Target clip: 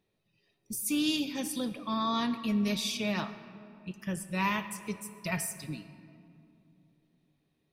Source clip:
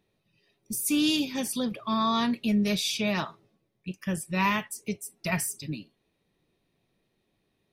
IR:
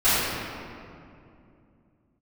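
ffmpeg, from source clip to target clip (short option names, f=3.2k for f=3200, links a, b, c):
-filter_complex "[0:a]asplit=2[a][b];[1:a]atrim=start_sample=2205,adelay=53[c];[b][c]afir=irnorm=-1:irlink=0,volume=-32dB[d];[a][d]amix=inputs=2:normalize=0,volume=-4.5dB"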